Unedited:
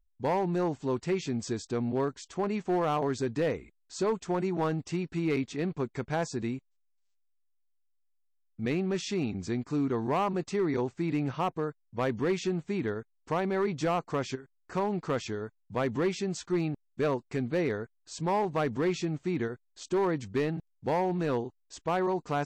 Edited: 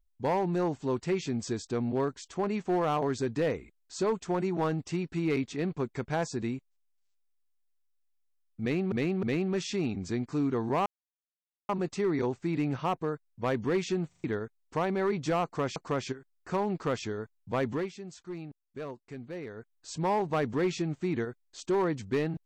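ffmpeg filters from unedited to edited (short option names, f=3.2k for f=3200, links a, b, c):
-filter_complex "[0:a]asplit=11[a][b][c][d][e][f][g][h][i][j][k];[a]atrim=end=8.922[l];[b]atrim=start=8.608:end=8.922[m];[c]atrim=start=8.608:end=10.24,asetpts=PTS-STARTPTS,afade=t=out:st=1.628:d=0.004:c=hsin,apad=pad_dur=0.83[n];[d]atrim=start=10.24:end=12.672,asetpts=PTS-STARTPTS,afade=t=in:d=0.004:c=hsin[o];[e]atrim=start=12.628:end=12.672[p];[f]atrim=start=12.628:end=12.672[q];[g]atrim=start=12.628:end=12.672[r];[h]atrim=start=12.788:end=14.312[s];[i]atrim=start=13.988:end=16.14,asetpts=PTS-STARTPTS,afade=t=out:st=1.932:d=0.22:silence=0.281838[t];[j]atrim=start=16.14:end=17.76,asetpts=PTS-STARTPTS,volume=-11dB[u];[k]atrim=start=17.76,asetpts=PTS-STARTPTS,afade=t=in:d=0.22:silence=0.281838[v];[l][m]acrossfade=d=0.004:c1=hsin:c2=hsin[w];[n][o]concat=n=2:v=0:a=1[x];[w][x]acrossfade=d=0.004:c1=hsin:c2=hsin[y];[y][p]acrossfade=d=0.004:c1=hsin:c2=hsin[z];[z][q]acrossfade=d=0.004:c1=hsin:c2=hsin[aa];[aa][r]acrossfade=d=0.004:c1=hsin:c2=hsin[ab];[ab][s]acrossfade=d=0.004:c1=hsin:c2=hsin[ac];[t][u][v]concat=n=3:v=0:a=1[ad];[ac][ad]acrossfade=d=0.004:c1=hsin:c2=hsin"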